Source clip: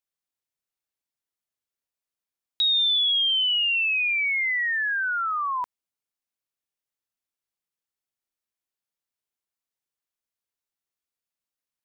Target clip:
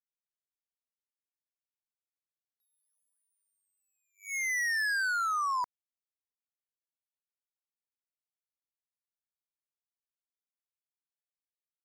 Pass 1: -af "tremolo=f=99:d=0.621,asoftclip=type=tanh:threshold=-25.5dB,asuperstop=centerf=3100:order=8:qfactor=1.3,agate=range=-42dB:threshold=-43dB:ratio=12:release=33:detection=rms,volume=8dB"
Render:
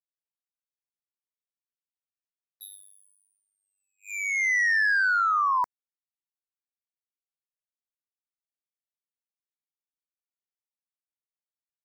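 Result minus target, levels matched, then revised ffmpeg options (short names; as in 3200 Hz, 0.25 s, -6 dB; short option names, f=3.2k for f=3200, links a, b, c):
soft clip: distortion -7 dB
-af "tremolo=f=99:d=0.621,asoftclip=type=tanh:threshold=-36.5dB,asuperstop=centerf=3100:order=8:qfactor=1.3,agate=range=-42dB:threshold=-43dB:ratio=12:release=33:detection=rms,volume=8dB"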